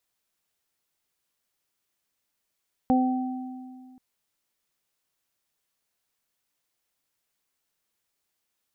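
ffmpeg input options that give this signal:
-f lavfi -i "aevalsrc='0.126*pow(10,-3*t/2.11)*sin(2*PI*256*t)+0.0473*pow(10,-3*t/0.57)*sin(2*PI*512*t)+0.0794*pow(10,-3*t/1.61)*sin(2*PI*768*t)':d=1.08:s=44100"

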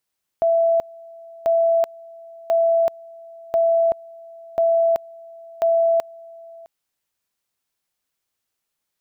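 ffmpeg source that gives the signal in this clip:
-f lavfi -i "aevalsrc='pow(10,(-14-24*gte(mod(t,1.04),0.38))/20)*sin(2*PI*666*t)':d=6.24:s=44100"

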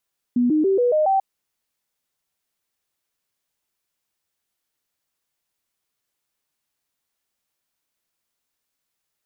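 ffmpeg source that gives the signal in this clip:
-f lavfi -i "aevalsrc='0.178*clip(min(mod(t,0.14),0.14-mod(t,0.14))/0.005,0,1)*sin(2*PI*244*pow(2,floor(t/0.14)/3)*mod(t,0.14))':d=0.84:s=44100"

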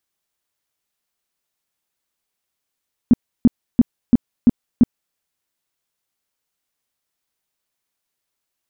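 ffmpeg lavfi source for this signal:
-f lavfi -i "aevalsrc='0.531*sin(2*PI*239*mod(t,0.34))*lt(mod(t,0.34),6/239)':d=2.04:s=44100"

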